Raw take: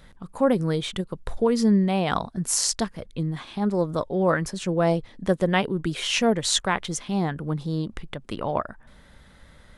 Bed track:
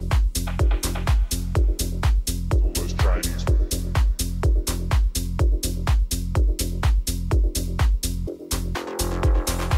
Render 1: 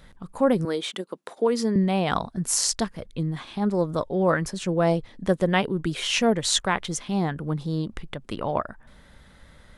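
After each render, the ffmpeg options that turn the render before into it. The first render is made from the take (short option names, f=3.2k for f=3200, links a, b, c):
-filter_complex "[0:a]asettb=1/sr,asplit=3[a][b][c];[a]atrim=end=0.654[d];[b]atrim=start=0.65:end=1.76,asetpts=PTS-STARTPTS,afade=t=in:d=0.004:c=qsin,afade=t=out:st=1.106:d=0.004:c=qsin,highpass=f=250:w=0.5412,highpass=f=250:w=1.3066[e];[c]atrim=start=1.756[f];[d][e]acrossfade=d=0.004:c1=hsin:c2=qsin[g];[g][f]acrossfade=d=0.004:c1=qsin:c2=hsin"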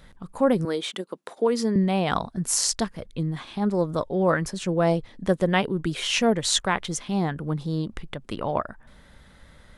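-af anull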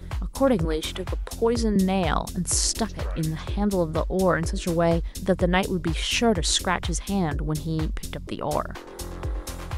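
-filter_complex "[1:a]volume=-10.5dB[a];[0:a][a]amix=inputs=2:normalize=0"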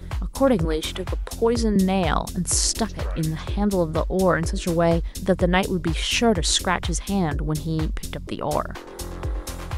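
-af "volume=2dB"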